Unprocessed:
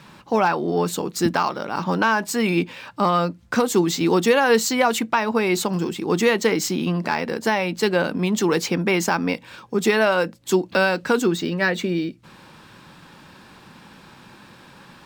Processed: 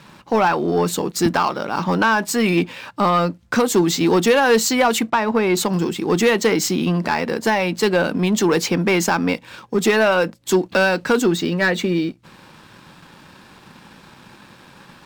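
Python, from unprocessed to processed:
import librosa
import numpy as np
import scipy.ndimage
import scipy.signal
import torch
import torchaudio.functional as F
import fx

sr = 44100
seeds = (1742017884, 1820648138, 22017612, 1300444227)

y = fx.high_shelf(x, sr, hz=4100.0, db=-11.5, at=(5.1, 5.57))
y = fx.leveller(y, sr, passes=1)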